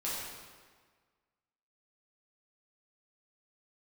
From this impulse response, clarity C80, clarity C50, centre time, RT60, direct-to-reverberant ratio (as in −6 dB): 1.0 dB, −1.5 dB, 102 ms, 1.6 s, −8.0 dB